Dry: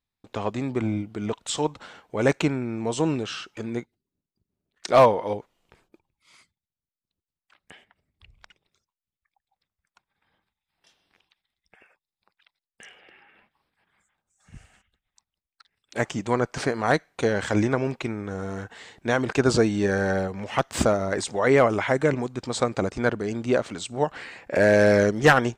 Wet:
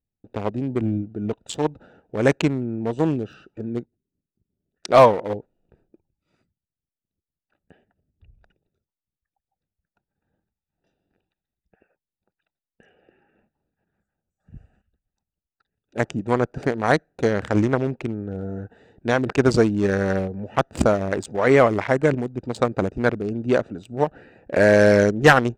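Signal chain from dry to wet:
adaptive Wiener filter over 41 samples
level +3.5 dB

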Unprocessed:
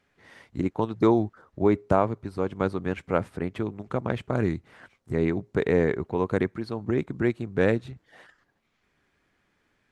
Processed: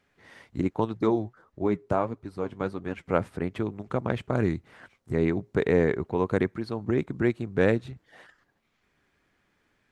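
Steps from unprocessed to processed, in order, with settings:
0:00.97–0:03.06: flanger 1.6 Hz, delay 2.2 ms, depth 6.5 ms, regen +61%

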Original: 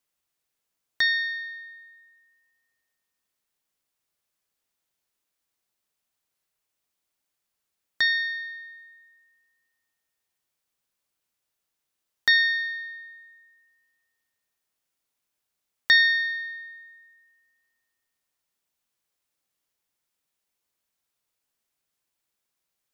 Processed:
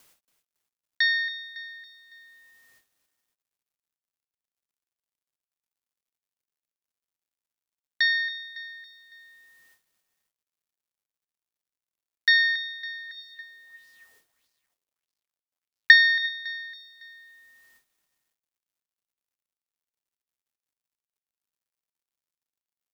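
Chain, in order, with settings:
upward compression, threshold −43 dBFS
noise gate with hold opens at −48 dBFS
repeating echo 278 ms, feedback 47%, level −14 dB
bit-depth reduction 12 bits, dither none
0:12.95–0:16.29: auto-filter bell 1.6 Hz 400–5,100 Hz +10 dB

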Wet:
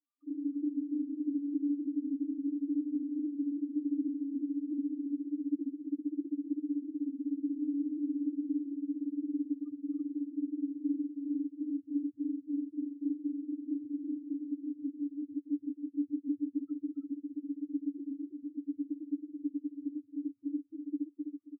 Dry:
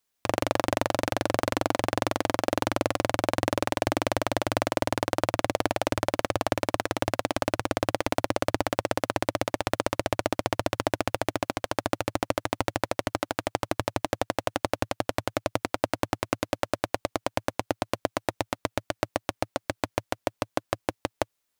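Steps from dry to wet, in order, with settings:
reversed piece by piece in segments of 59 ms
parametric band 390 Hz +10 dB 2.6 octaves
brickwall limiter −2.5 dBFS, peak gain reduction 5 dB
pair of resonant band-passes 590 Hz, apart 2.1 octaves
spectral peaks only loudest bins 2
on a send: multi-tap delay 271/328 ms −13/−7 dB

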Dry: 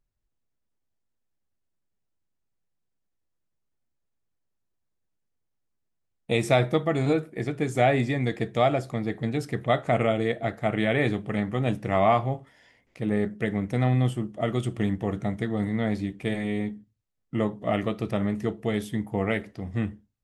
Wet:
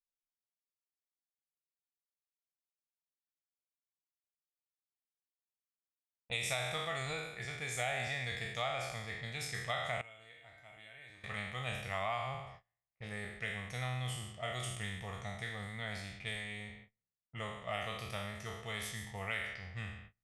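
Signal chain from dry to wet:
peak hold with a decay on every bin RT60 0.96 s
noise gate −37 dBFS, range −28 dB
low-pass that shuts in the quiet parts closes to 1,100 Hz, open at −21.5 dBFS
guitar amp tone stack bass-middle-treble 10-0-10
downward compressor, threshold −30 dBFS, peak gain reduction 6.5 dB
0:10.01–0:11.24: tuned comb filter 310 Hz, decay 0.49 s, harmonics odd, mix 90%
level −2 dB

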